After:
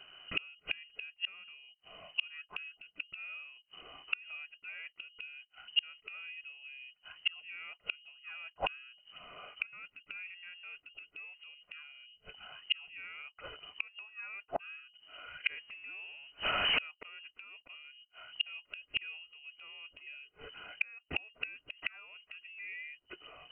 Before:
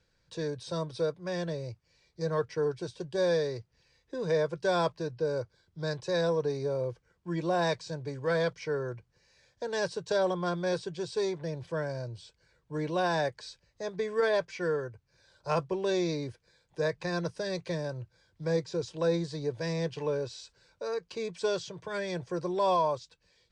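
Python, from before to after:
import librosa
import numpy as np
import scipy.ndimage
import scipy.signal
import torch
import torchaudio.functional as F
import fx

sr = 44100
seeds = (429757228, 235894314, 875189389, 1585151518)

y = fx.zero_step(x, sr, step_db=-40.5, at=(15.53, 16.85))
y = fx.freq_invert(y, sr, carrier_hz=3000)
y = fx.gate_flip(y, sr, shuts_db=-34.0, range_db=-36)
y = F.gain(torch.from_numpy(y), 17.0).numpy()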